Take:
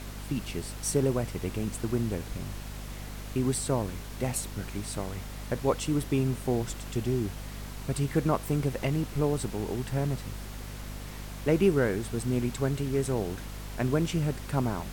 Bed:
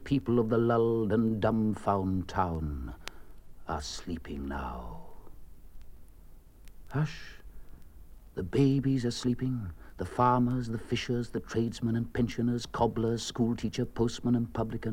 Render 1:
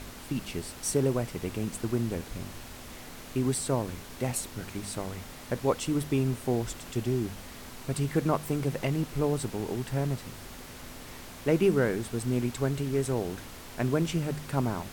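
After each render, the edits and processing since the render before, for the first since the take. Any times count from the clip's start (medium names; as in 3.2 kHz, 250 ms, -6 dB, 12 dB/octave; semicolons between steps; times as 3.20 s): de-hum 50 Hz, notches 4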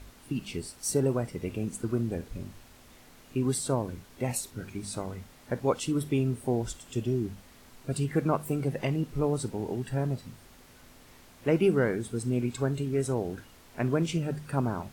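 noise print and reduce 10 dB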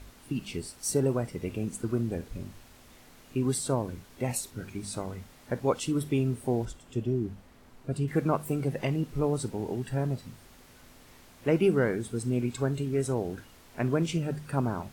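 6.65–8.08 s: treble shelf 2.3 kHz -10 dB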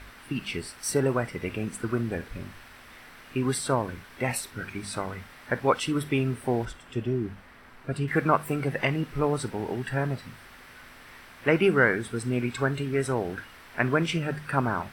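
peaking EQ 1.7 kHz +13.5 dB 1.8 oct; band-stop 6.8 kHz, Q 5.5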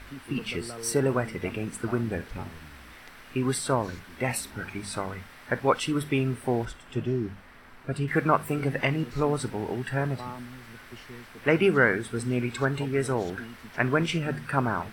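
add bed -14.5 dB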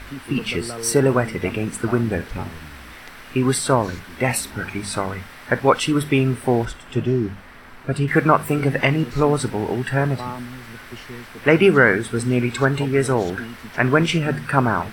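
trim +8 dB; peak limiter -2 dBFS, peak gain reduction 2 dB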